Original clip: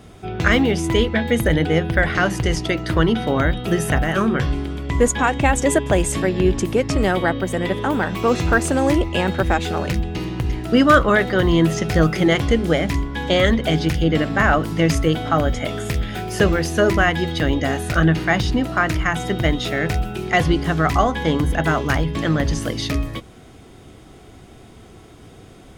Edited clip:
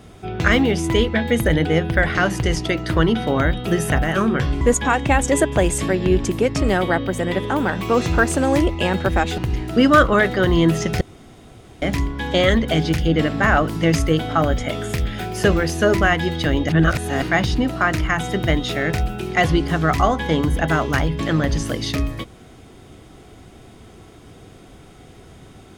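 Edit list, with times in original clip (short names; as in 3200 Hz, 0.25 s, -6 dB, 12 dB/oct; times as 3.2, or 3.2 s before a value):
4.61–4.95 cut
9.72–10.34 cut
11.97–12.78 room tone
17.65–18.18 reverse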